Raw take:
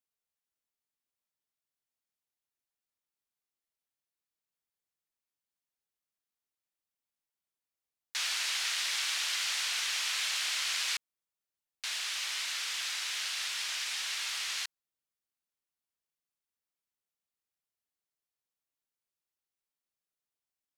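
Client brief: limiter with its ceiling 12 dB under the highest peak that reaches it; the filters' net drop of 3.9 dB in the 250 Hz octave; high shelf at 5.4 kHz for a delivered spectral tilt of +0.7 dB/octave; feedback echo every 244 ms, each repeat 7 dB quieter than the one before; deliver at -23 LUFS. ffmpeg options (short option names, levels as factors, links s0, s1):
-af "equalizer=f=250:t=o:g=-6,highshelf=f=5400:g=6.5,alimiter=level_in=1.78:limit=0.0631:level=0:latency=1,volume=0.562,aecho=1:1:244|488|732|976|1220:0.447|0.201|0.0905|0.0407|0.0183,volume=3.98"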